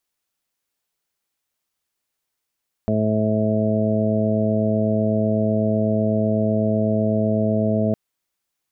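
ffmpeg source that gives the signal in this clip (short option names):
-f lavfi -i "aevalsrc='0.0668*sin(2*PI*108*t)+0.1*sin(2*PI*216*t)+0.0282*sin(2*PI*324*t)+0.0447*sin(2*PI*432*t)+0.0355*sin(2*PI*540*t)+0.0668*sin(2*PI*648*t)':d=5.06:s=44100"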